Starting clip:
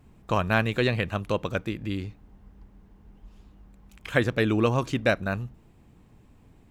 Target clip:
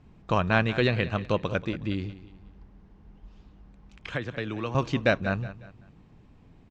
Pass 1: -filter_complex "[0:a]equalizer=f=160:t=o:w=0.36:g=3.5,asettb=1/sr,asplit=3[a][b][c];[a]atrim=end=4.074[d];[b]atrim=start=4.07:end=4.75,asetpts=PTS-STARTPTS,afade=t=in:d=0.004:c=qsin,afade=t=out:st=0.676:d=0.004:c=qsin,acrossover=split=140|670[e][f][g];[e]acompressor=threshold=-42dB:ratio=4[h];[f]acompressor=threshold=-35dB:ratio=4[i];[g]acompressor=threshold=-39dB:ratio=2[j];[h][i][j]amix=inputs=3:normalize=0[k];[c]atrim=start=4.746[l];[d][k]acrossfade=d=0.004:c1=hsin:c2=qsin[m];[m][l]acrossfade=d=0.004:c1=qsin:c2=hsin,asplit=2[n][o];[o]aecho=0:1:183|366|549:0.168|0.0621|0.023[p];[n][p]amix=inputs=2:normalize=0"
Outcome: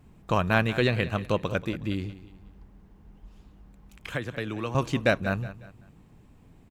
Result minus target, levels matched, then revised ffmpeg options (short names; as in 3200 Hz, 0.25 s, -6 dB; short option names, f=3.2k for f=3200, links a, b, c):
8000 Hz band +5.0 dB
-filter_complex "[0:a]lowpass=f=6k:w=0.5412,lowpass=f=6k:w=1.3066,equalizer=f=160:t=o:w=0.36:g=3.5,asettb=1/sr,asplit=3[a][b][c];[a]atrim=end=4.074[d];[b]atrim=start=4.07:end=4.75,asetpts=PTS-STARTPTS,afade=t=in:d=0.004:c=qsin,afade=t=out:st=0.676:d=0.004:c=qsin,acrossover=split=140|670[e][f][g];[e]acompressor=threshold=-42dB:ratio=4[h];[f]acompressor=threshold=-35dB:ratio=4[i];[g]acompressor=threshold=-39dB:ratio=2[j];[h][i][j]amix=inputs=3:normalize=0[k];[c]atrim=start=4.746[l];[d][k]acrossfade=d=0.004:c1=hsin:c2=qsin[m];[m][l]acrossfade=d=0.004:c1=qsin:c2=hsin,asplit=2[n][o];[o]aecho=0:1:183|366|549:0.168|0.0621|0.023[p];[n][p]amix=inputs=2:normalize=0"